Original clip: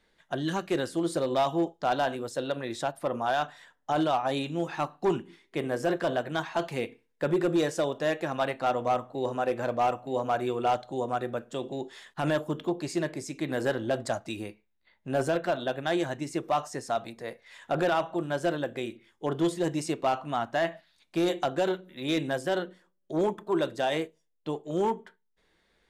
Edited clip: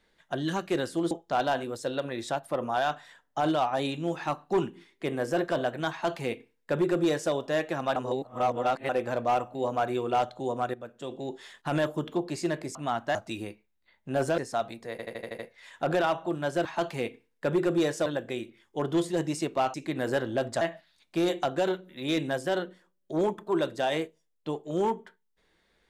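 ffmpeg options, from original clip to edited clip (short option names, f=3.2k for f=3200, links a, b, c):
-filter_complex "[0:a]asplit=18[a][b][c][d][e][f][g][h][i][j][k][l][m][n][o][p][q][r];[a]atrim=end=1.112[s];[b]atrim=start=1.628:end=8.482[t];[c]atrim=start=8.478:end=9.412,asetpts=PTS-STARTPTS,areverse[u];[d]atrim=start=9.408:end=11.26,asetpts=PTS-STARTPTS,afade=t=out:st=1.848:d=0.004:c=hsin:silence=0.237137[v];[e]atrim=start=11.26:end=13.272,asetpts=PTS-STARTPTS,afade=t=in:d=0.6:silence=0.237137[w];[f]atrim=start=20.208:end=20.612[x];[g]atrim=start=14.138:end=15.372[y];[h]atrim=start=16.738:end=17.352[z];[i]atrim=start=17.268:end=17.352[aa];[j]atrim=start=17.268:end=17.352[ab];[k]atrim=start=17.268:end=17.352[ac];[l]atrim=start=17.268:end=17.352[ad];[m]atrim=start=17.268:end=17.352[ae];[n]atrim=start=17.268:end=18.532[af];[o]atrim=start=6.428:end=7.842[ag];[p]atrim=start=18.528:end=20.212[ah];[q]atrim=start=13.268:end=14.142[ai];[r]atrim=start=20.608[aj];[s][t]acrossfade=d=0.004:c1=hsin:c2=hsin[ak];[ak][u]acrossfade=d=0.004:c1=hsin:c2=hsin[al];[v][w]concat=n=2:v=0:a=1[am];[al][am]acrossfade=d=0.004:c1=hsin:c2=hsin[an];[an][x]acrossfade=d=0.004:c1=hsin:c2=hsin[ao];[ao][y]acrossfade=d=0.004:c1=hsin:c2=hsin[ap];[ap][z]acrossfade=d=0.004:c1=hsin:c2=hsin[aq];[aq][aa]acrossfade=d=0.004:c1=hsin:c2=hsin[ar];[ar][ab]acrossfade=d=0.004:c1=hsin:c2=hsin[as];[as][ac]acrossfade=d=0.004:c1=hsin:c2=hsin[at];[at][ad]acrossfade=d=0.004:c1=hsin:c2=hsin[au];[au][ae]acrossfade=d=0.004:c1=hsin:c2=hsin[av];[av][af]acrossfade=d=0.004:c1=hsin:c2=hsin[aw];[aw][ag]acrossfade=d=0.004:c1=hsin:c2=hsin[ax];[ax][ah]acrossfade=d=0.004:c1=hsin:c2=hsin[ay];[ay][ai]acrossfade=d=0.004:c1=hsin:c2=hsin[az];[az][aj]acrossfade=d=0.004:c1=hsin:c2=hsin"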